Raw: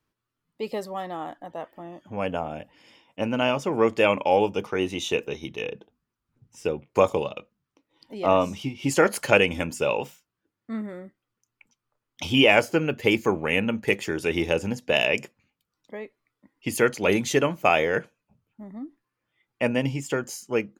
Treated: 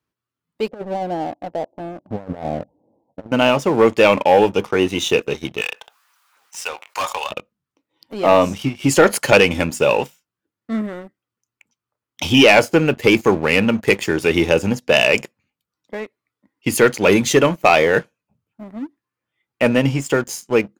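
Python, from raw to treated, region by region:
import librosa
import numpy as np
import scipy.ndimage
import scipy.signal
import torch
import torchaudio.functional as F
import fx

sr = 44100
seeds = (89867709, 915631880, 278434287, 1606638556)

y = fx.chain(x, sr, fx.steep_lowpass(hz=810.0, slope=48),
    fx.over_compress(threshold_db=-33.0, ratio=-0.5), at=(0.68, 3.32))
y = fx.chain(y, sr, fx.highpass(hz=850.0, slope=24),
    fx.clip_hard(threshold_db=-28.0),
    fx.env_flatten(amount_pct=50), at=(5.61, 7.31))
y = scipy.signal.sosfilt(scipy.signal.butter(2, 57.0, 'highpass', fs=sr, output='sos'), y)
y = fx.leveller(y, sr, passes=2)
y = F.gain(torch.from_numpy(y), 1.5).numpy()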